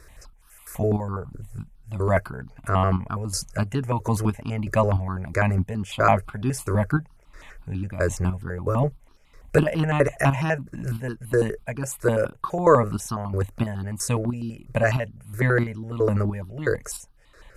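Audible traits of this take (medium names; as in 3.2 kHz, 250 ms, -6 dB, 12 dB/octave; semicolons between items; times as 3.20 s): chopped level 1.5 Hz, depth 60%, duty 45%; notches that jump at a steady rate 12 Hz 830–2100 Hz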